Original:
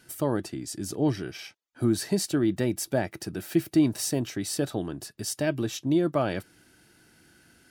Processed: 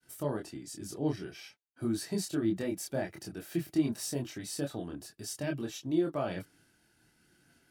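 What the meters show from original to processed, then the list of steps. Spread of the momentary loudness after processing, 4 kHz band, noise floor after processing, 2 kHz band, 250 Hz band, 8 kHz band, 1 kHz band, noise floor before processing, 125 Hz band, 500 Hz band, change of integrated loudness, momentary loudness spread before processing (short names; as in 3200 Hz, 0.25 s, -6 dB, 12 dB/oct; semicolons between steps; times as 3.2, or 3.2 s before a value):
12 LU, -7.5 dB, -70 dBFS, -7.5 dB, -7.0 dB, -7.5 dB, -7.5 dB, -61 dBFS, -7.5 dB, -7.0 dB, -7.0 dB, 11 LU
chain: chorus voices 4, 0.48 Hz, delay 25 ms, depth 3.7 ms; expander -59 dBFS; gain -4.5 dB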